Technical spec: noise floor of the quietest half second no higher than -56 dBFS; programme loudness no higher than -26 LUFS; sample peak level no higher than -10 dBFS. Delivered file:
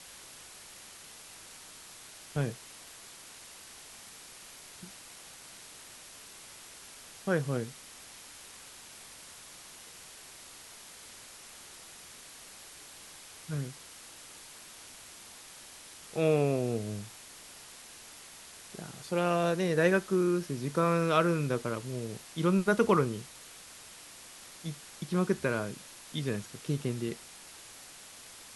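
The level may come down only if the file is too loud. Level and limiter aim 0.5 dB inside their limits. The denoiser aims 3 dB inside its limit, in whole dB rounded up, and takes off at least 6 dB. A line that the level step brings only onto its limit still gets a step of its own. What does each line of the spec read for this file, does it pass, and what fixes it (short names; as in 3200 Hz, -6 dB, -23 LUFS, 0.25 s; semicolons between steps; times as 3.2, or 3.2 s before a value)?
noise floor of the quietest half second -50 dBFS: fail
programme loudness -31.0 LUFS: OK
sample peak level -11.0 dBFS: OK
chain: denoiser 9 dB, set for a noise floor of -50 dBFS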